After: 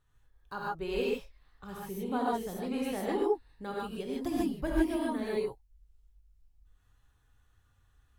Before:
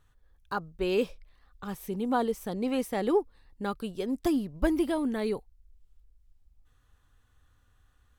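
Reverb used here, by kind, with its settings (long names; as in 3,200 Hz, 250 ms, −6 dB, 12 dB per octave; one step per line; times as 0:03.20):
reverb whose tail is shaped and stops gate 170 ms rising, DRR −5 dB
level −8.5 dB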